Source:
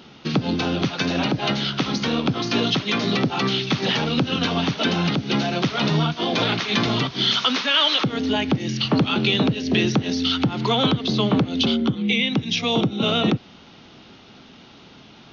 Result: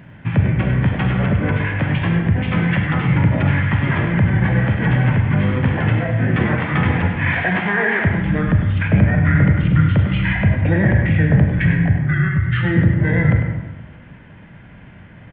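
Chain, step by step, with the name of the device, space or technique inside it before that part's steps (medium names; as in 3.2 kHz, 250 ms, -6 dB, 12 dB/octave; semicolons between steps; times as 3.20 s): monster voice (pitch shift -5.5 st; formant shift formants -5 st; bass shelf 240 Hz +9 dB; delay 100 ms -9.5 dB; reverberation RT60 1.3 s, pre-delay 28 ms, DRR 3.5 dB); trim -1 dB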